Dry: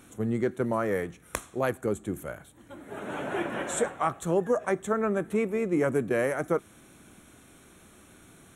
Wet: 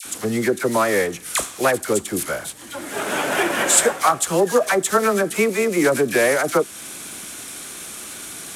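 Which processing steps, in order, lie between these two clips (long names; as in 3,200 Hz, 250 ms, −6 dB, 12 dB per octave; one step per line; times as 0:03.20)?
variable-slope delta modulation 64 kbit/s
high-shelf EQ 2,400 Hz +11 dB
in parallel at +1 dB: downward compressor, threshold −37 dBFS, peak gain reduction 16.5 dB
on the sum: low-shelf EQ 180 Hz −12 dB
all-pass dispersion lows, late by 54 ms, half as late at 1,200 Hz
level +8 dB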